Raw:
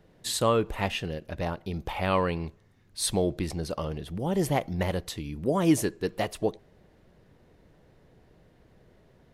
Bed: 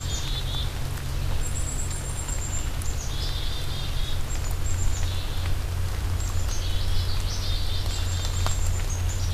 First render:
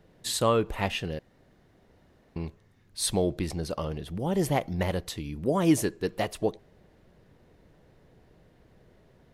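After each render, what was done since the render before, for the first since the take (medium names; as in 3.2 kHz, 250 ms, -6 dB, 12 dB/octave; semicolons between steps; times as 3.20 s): 1.19–2.36 s: room tone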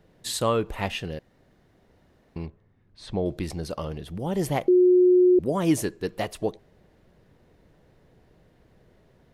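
2.46–3.26 s: tape spacing loss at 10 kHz 30 dB; 4.68–5.39 s: bleep 362 Hz -13.5 dBFS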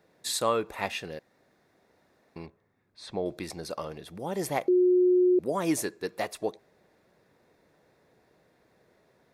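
high-pass 490 Hz 6 dB/octave; band-stop 3 kHz, Q 6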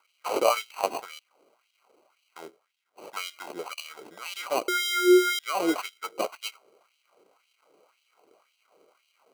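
sample-and-hold 25×; LFO high-pass sine 1.9 Hz 360–3100 Hz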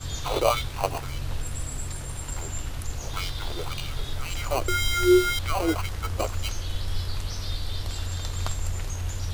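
add bed -4 dB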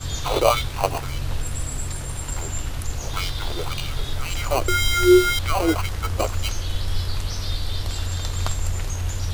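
trim +4.5 dB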